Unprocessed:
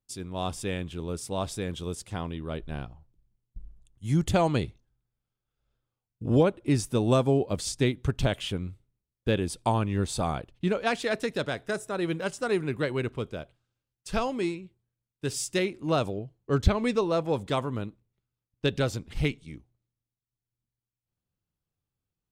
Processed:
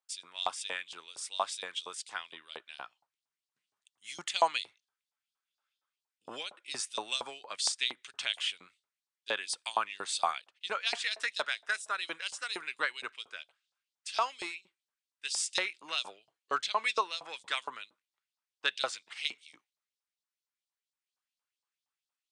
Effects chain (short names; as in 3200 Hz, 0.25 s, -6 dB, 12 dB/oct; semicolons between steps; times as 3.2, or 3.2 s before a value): Chebyshev band-pass 100–9300 Hz, order 4; LFO high-pass saw up 4.3 Hz 810–4900 Hz